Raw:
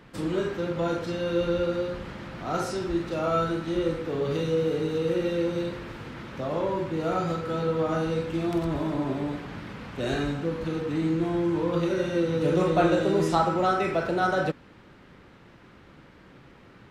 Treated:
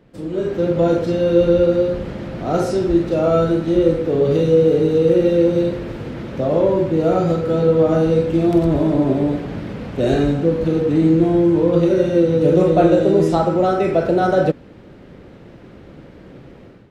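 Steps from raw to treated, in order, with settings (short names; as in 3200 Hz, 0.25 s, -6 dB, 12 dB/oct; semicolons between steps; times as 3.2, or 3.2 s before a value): AGC gain up to 12 dB; resonant low shelf 780 Hz +7 dB, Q 1.5; gain -7.5 dB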